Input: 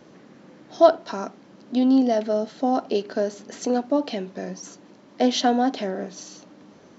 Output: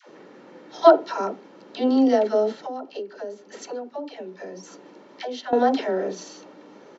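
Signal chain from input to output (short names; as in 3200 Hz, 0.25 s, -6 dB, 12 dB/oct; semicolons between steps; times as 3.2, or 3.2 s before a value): HPF 260 Hz 12 dB/oct; high shelf 4400 Hz -10 dB; comb 2.2 ms, depth 32%; dispersion lows, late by 88 ms, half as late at 550 Hz; 2.66–5.53 compressor 2.5:1, threshold -42 dBFS, peak gain reduction 15.5 dB; gain +4.5 dB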